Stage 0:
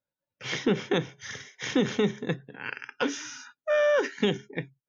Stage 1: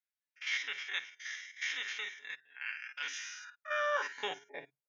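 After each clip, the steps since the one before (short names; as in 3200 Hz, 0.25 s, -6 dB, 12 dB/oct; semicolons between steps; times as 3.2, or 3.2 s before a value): stepped spectrum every 50 ms; high-pass sweep 2000 Hz -> 510 Hz, 3.25–4.86; comb 7 ms, depth 44%; gain -6 dB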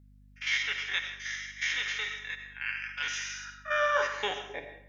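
on a send at -7 dB: reverb RT60 0.65 s, pre-delay 50 ms; on the sum: hum 50 Hz, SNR 23 dB; gain +5.5 dB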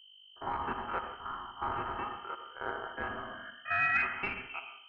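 inverted band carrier 3100 Hz; core saturation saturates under 500 Hz; gain -2 dB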